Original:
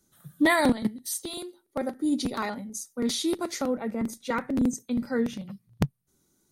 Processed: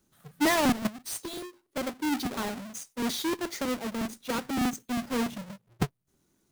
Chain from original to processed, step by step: square wave that keeps the level; trim -6.5 dB

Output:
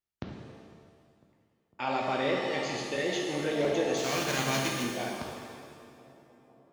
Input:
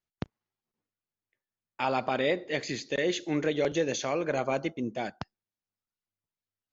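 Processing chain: 3.96–4.82 s: formants flattened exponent 0.3; bucket-brigade echo 502 ms, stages 4096, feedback 64%, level -21.5 dB; pitch-shifted reverb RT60 1.8 s, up +7 st, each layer -8 dB, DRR -1 dB; trim -4.5 dB

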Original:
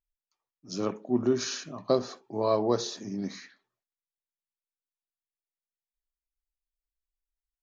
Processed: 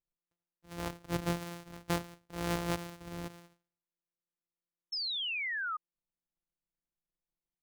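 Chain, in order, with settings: sorted samples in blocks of 256 samples; painted sound fall, 4.92–5.77 s, 1.2–5.4 kHz -27 dBFS; trim -8.5 dB

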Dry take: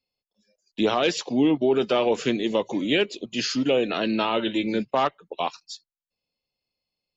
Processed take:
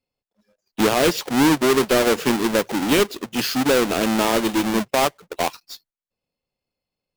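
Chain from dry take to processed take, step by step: square wave that keeps the level; tape noise reduction on one side only decoder only

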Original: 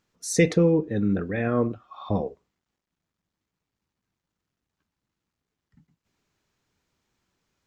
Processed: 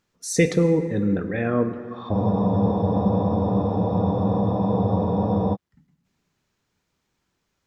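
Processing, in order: plate-style reverb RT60 2.6 s, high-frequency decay 0.45×, DRR 9.5 dB; spectral freeze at 2.17 s, 3.37 s; trim +1 dB

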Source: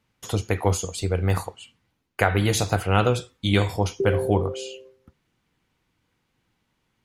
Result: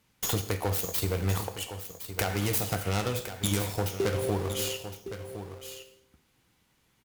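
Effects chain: tracing distortion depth 0.39 ms; treble shelf 5.8 kHz +11 dB; compression 6:1, threshold -30 dBFS, peak gain reduction 17.5 dB; in parallel at -6 dB: word length cut 6-bit, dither none; on the sum: one-sided clip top -20 dBFS; on a send: delay 1062 ms -11 dB; on the sum: gated-style reverb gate 280 ms falling, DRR 9 dB; trim +1 dB

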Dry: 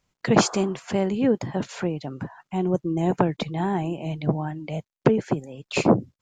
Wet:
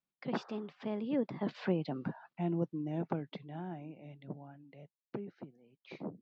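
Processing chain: Doppler pass-by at 1.92 s, 31 m/s, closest 11 m; steep low-pass 4.7 kHz 36 dB/octave; resonant low shelf 120 Hz -12.5 dB, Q 1.5; trim -5.5 dB

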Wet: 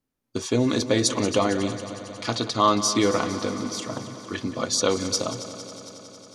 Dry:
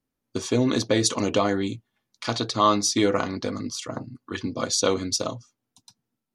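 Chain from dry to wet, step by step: multi-head delay 91 ms, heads second and third, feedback 71%, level -14.5 dB

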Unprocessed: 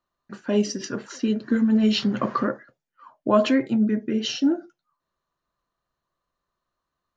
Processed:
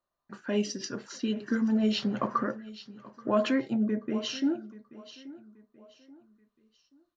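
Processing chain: 2.27–3.37 s: treble shelf 2.7 kHz -11 dB; on a send: feedback delay 831 ms, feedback 36%, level -18 dB; on the sum: sweeping bell 0.51 Hz 570–5300 Hz +7 dB; trim -7 dB

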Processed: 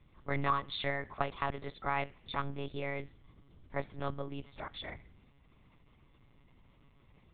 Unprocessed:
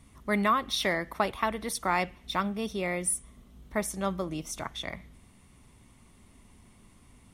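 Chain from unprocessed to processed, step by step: monotone LPC vocoder at 8 kHz 140 Hz; trim -6 dB

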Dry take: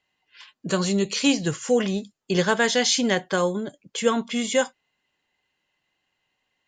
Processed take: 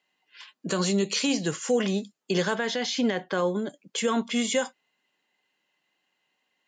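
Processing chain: high-pass 170 Hz 24 dB/octave; peak limiter -15.5 dBFS, peak gain reduction 8.5 dB; 2.55–3.56 s: distance through air 130 m

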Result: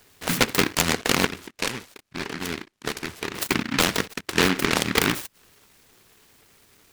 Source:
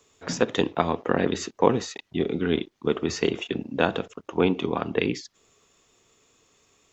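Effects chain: compression 2.5:1, threshold -24 dBFS, peak gain reduction 8.5 dB; 1.26–3.35 s: four-pole ladder low-pass 1.5 kHz, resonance 60%; delay time shaken by noise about 1.7 kHz, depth 0.4 ms; trim +6.5 dB

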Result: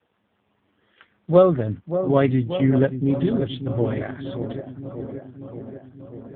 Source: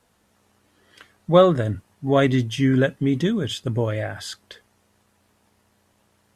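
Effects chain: feedback echo behind a low-pass 583 ms, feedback 69%, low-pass 1 kHz, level -9 dB; AMR-NB 4.75 kbps 8 kHz

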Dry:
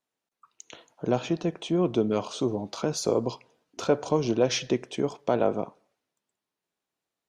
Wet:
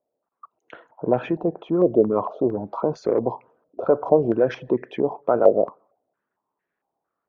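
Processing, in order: resonances exaggerated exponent 1.5; Chebyshev shaper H 7 -39 dB, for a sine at -11.5 dBFS; step-sequenced low-pass 4.4 Hz 600–1800 Hz; trim +3 dB

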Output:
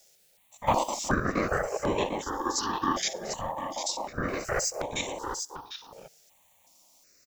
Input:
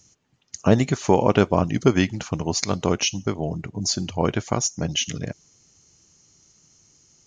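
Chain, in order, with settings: spectrogram pixelated in time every 50 ms; whisper effect; in parallel at -8 dB: word length cut 8-bit, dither triangular; 2.20–3.02 s: on the sum: rippled EQ curve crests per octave 0.78, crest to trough 16 dB; ring modulator 720 Hz; 0.67–1.09 s: treble shelf 3.7 kHz +11 dB; 4.28–4.82 s: waveshaping leveller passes 2; delay 749 ms -7.5 dB; stepped phaser 2.7 Hz 280–4900 Hz; trim -4.5 dB

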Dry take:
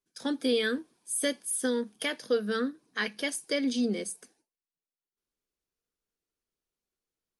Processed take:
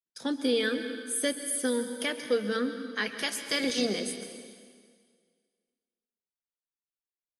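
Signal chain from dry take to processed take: 3.07–3.99 s: spectral peaks clipped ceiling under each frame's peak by 17 dB; gate with hold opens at -59 dBFS; plate-style reverb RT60 1.9 s, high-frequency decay 0.95×, pre-delay 115 ms, DRR 8.5 dB

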